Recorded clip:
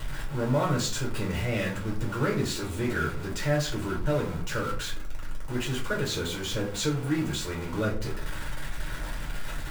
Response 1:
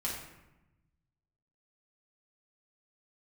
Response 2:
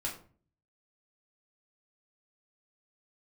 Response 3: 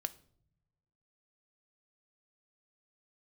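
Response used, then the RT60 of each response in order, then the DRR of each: 2; 0.95, 0.45, 0.70 s; -5.0, -3.5, 11.5 dB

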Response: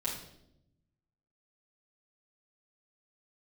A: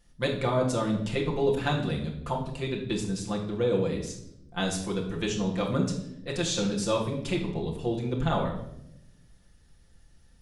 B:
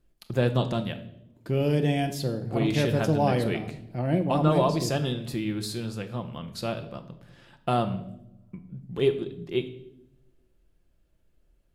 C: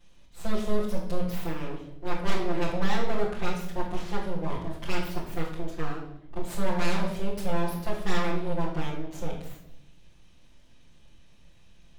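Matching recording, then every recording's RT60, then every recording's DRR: C; 0.80, 0.80, 0.80 s; -1.5, 7.0, -7.0 dB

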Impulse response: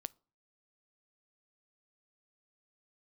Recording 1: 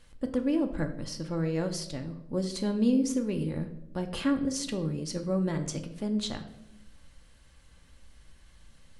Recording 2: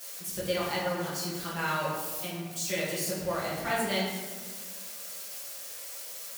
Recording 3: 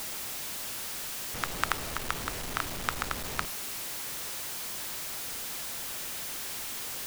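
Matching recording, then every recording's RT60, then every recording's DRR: 3; 0.80, 1.5, 0.40 s; 5.0, -8.5, 20.0 dB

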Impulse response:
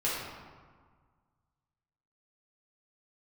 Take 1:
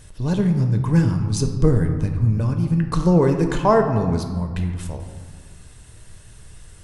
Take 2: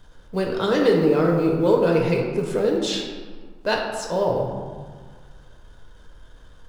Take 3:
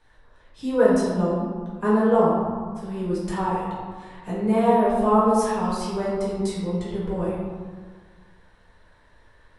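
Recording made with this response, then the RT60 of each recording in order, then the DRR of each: 3; 1.6, 1.6, 1.6 s; 4.5, -1.0, -8.5 dB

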